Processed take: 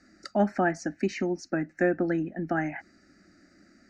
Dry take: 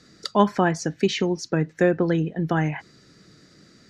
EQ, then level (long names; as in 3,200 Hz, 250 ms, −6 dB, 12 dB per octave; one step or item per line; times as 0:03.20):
high-frequency loss of the air 70 metres
phaser with its sweep stopped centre 680 Hz, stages 8
−1.5 dB